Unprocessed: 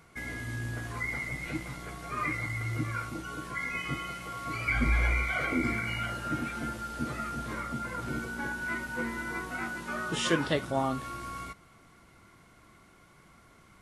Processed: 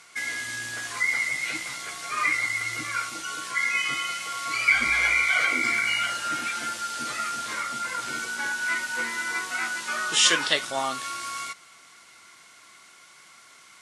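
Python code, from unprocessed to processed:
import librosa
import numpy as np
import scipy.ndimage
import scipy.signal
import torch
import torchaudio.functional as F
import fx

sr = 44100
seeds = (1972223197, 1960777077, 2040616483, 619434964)

y = fx.weighting(x, sr, curve='ITU-R 468')
y = y * librosa.db_to_amplitude(4.0)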